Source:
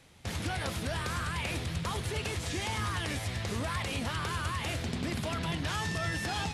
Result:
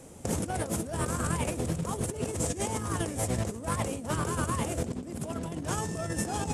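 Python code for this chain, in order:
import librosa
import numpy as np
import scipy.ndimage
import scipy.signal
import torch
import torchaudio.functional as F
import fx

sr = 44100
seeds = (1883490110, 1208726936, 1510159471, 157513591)

y = fx.graphic_eq(x, sr, hz=(250, 500, 2000, 4000, 8000), db=(7, 8, -7, -12, 11))
y = fx.over_compress(y, sr, threshold_db=-34.0, ratio=-0.5)
y = F.gain(torch.from_numpy(y), 3.0).numpy()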